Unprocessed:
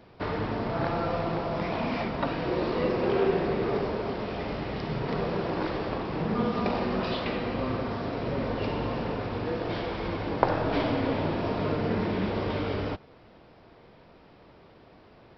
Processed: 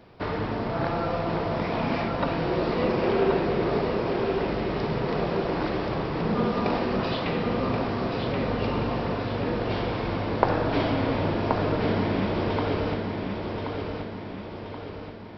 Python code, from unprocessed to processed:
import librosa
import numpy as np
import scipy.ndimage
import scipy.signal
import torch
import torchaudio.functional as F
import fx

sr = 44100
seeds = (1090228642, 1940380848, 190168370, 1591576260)

y = fx.echo_feedback(x, sr, ms=1078, feedback_pct=50, wet_db=-5.0)
y = F.gain(torch.from_numpy(y), 1.5).numpy()